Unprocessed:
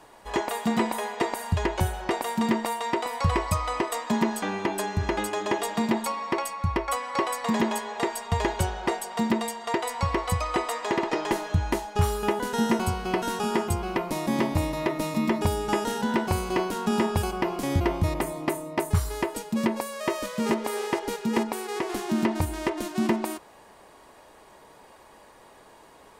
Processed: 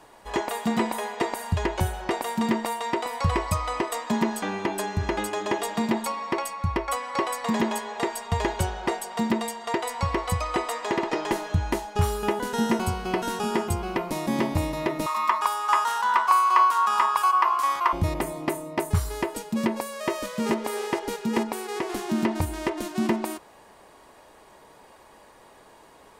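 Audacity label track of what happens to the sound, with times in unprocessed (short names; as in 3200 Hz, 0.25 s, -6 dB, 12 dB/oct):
15.060000	17.930000	resonant high-pass 1100 Hz, resonance Q 11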